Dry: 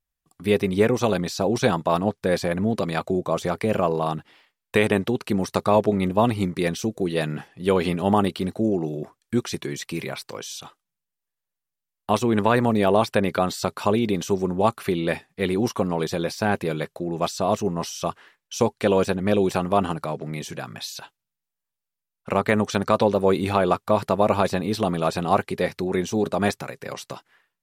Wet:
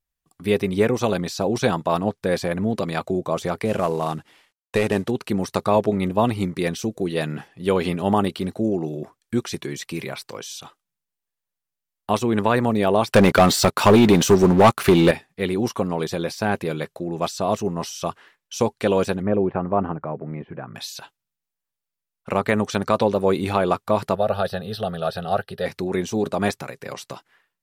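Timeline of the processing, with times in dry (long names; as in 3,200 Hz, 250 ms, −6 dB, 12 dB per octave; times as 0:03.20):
0:03.65–0:05.11: variable-slope delta modulation 64 kbit/s
0:13.12–0:15.11: leveller curve on the samples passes 3
0:19.22–0:20.75: Bessel low-pass filter 1,300 Hz, order 6
0:24.15–0:25.66: phaser with its sweep stopped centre 1,500 Hz, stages 8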